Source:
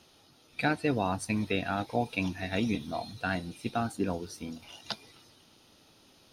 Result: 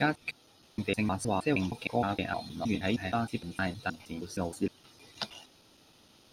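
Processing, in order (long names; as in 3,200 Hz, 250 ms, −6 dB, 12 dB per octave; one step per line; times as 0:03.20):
slices reordered back to front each 156 ms, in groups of 5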